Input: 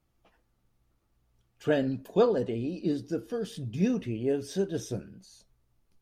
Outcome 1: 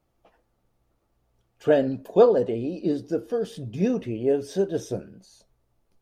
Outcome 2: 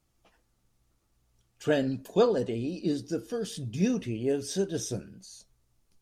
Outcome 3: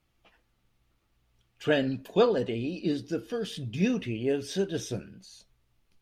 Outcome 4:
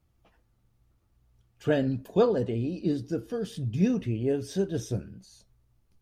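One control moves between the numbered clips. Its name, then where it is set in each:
bell, frequency: 590, 7400, 2800, 82 Hz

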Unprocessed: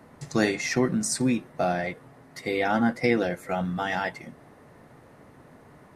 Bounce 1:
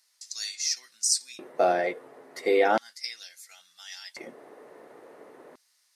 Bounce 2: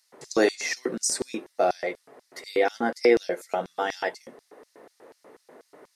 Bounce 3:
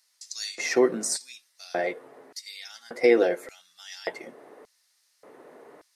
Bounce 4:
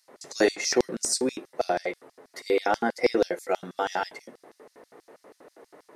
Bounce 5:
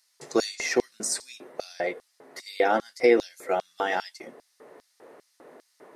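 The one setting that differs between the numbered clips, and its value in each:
LFO high-pass, rate: 0.36, 4.1, 0.86, 6.2, 2.5 Hz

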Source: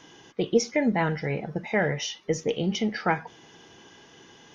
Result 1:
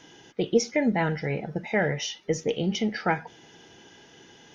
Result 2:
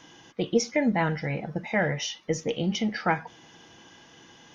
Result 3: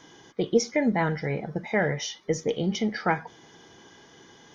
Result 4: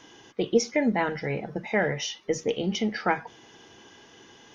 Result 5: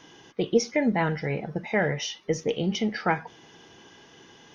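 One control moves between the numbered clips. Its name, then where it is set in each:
notch, frequency: 1100, 410, 2700, 160, 7300 Hz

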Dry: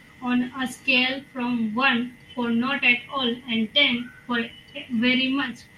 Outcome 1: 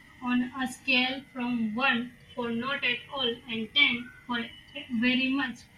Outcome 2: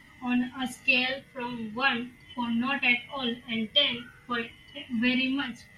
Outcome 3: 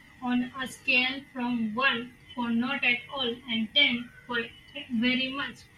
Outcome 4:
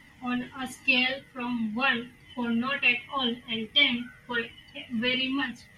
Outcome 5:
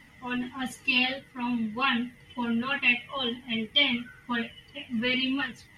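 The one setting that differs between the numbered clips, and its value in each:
cascading flanger, rate: 0.22, 0.42, 0.85, 1.3, 2.1 Hz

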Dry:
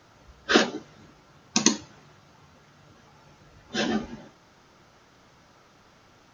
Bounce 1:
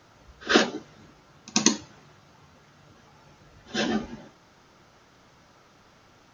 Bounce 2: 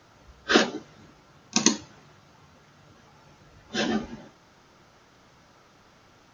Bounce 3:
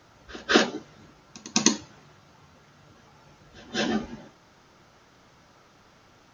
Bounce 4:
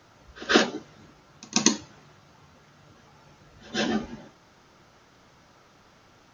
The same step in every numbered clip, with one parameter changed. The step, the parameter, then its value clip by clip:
pre-echo, time: 84, 31, 206, 134 ms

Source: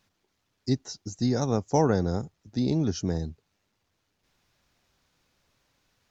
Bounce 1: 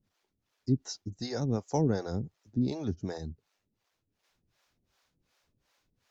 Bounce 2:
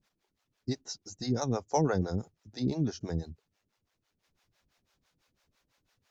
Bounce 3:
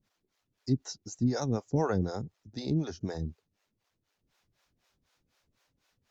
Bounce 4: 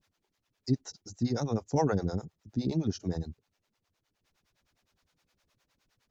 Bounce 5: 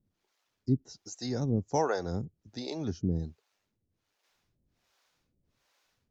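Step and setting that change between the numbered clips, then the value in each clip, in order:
harmonic tremolo, rate: 2.7, 6, 4, 9.7, 1.3 Hz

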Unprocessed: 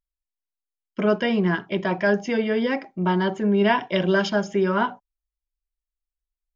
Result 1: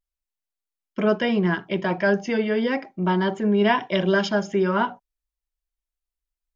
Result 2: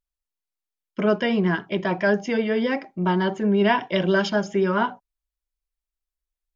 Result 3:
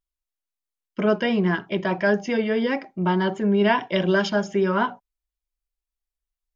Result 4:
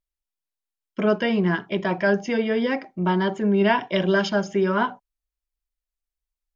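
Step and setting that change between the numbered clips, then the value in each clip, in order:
vibrato, rate: 0.34, 7.6, 4.8, 1.3 Hz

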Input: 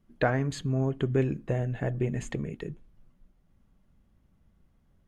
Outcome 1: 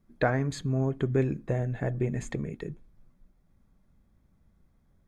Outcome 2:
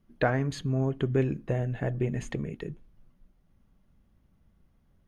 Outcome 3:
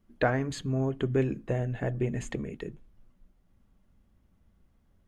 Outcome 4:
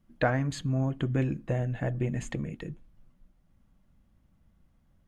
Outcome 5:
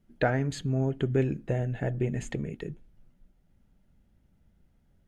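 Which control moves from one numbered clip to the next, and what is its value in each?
notch, frequency: 2900, 7600, 150, 410, 1100 Hz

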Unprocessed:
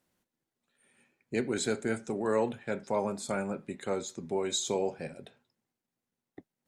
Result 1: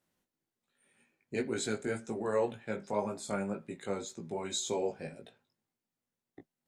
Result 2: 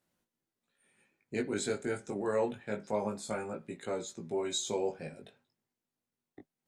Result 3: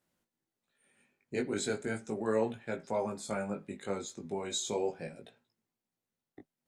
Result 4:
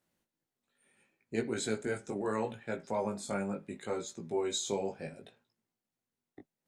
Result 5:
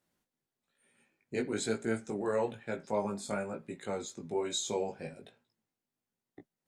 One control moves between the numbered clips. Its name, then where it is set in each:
chorus, rate: 1.9, 0.25, 0.37, 0.72, 1.1 Hz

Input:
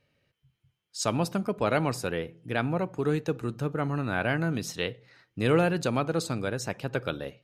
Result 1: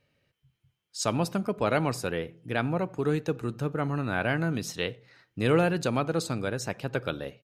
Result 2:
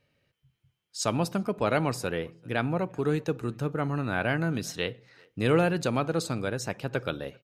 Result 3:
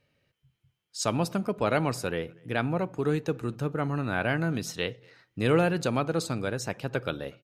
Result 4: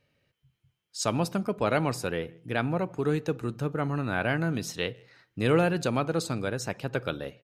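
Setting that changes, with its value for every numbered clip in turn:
speakerphone echo, time: 90, 390, 240, 160 ms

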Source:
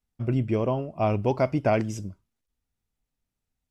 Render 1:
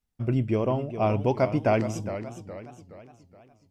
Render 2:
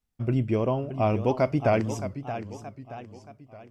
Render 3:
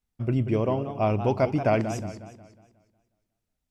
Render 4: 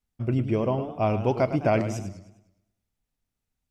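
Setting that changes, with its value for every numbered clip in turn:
warbling echo, time: 0.417, 0.622, 0.181, 0.102 s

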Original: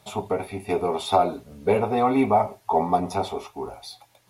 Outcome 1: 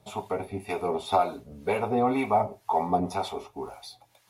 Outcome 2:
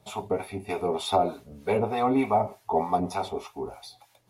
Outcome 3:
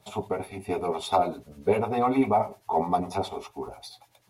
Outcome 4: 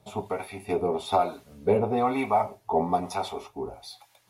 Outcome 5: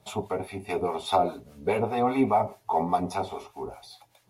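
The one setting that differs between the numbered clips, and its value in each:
harmonic tremolo, rate: 2, 3.3, 10, 1.1, 4.9 Hz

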